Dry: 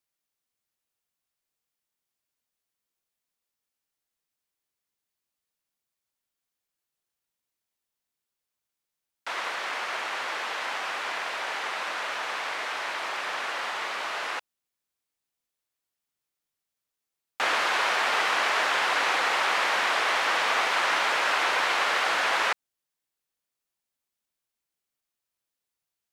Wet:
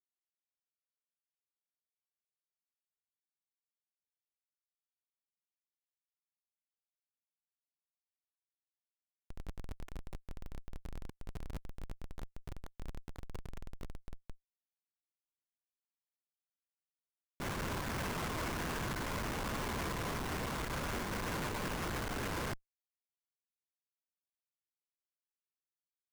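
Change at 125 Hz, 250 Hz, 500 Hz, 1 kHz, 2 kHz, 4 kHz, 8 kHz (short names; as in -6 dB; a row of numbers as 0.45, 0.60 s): n/a, +4.0 dB, -10.5 dB, -16.5 dB, -19.0 dB, -18.0 dB, -10.0 dB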